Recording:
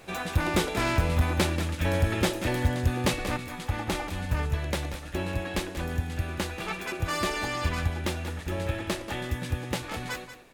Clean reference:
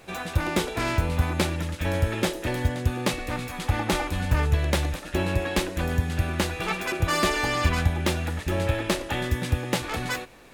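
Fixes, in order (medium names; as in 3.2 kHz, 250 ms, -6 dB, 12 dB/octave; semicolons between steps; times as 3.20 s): clip repair -15.5 dBFS; inverse comb 185 ms -11.5 dB; trim 0 dB, from 3.37 s +5.5 dB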